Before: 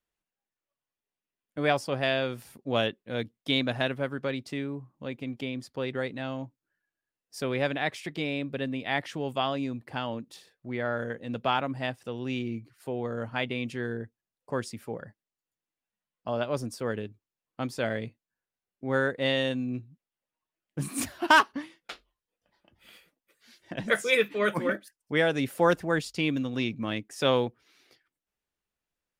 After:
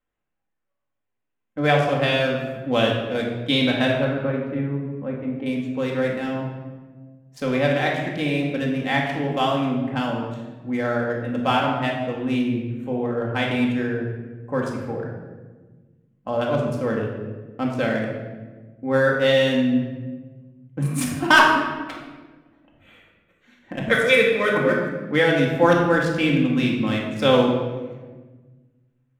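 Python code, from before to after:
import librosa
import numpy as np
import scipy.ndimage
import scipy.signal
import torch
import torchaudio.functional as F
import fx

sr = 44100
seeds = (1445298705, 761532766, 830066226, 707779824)

y = fx.wiener(x, sr, points=9)
y = fx.lowpass(y, sr, hz=1500.0, slope=12, at=(4.04, 5.46))
y = fx.room_shoebox(y, sr, seeds[0], volume_m3=1000.0, walls='mixed', distance_m=2.1)
y = y * 10.0 ** (3.5 / 20.0)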